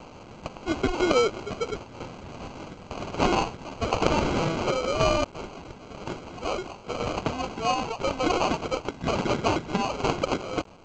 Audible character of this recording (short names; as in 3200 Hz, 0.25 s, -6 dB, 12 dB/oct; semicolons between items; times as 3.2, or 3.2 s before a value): a quantiser's noise floor 8-bit, dither triangular; tremolo saw down 1 Hz, depth 55%; aliases and images of a low sample rate 1800 Hz, jitter 0%; G.722